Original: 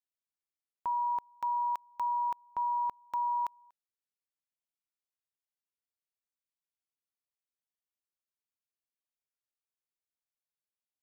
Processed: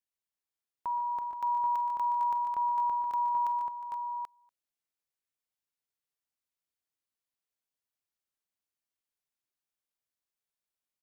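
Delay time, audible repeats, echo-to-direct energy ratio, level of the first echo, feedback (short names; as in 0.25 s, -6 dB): 47 ms, 5, -1.5 dB, -15.5 dB, no steady repeat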